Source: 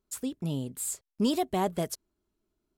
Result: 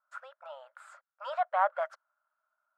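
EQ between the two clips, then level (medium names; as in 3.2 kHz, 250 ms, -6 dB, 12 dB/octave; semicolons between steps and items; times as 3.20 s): brick-wall FIR high-pass 530 Hz; resonant low-pass 1.4 kHz, resonance Q 8.5; 0.0 dB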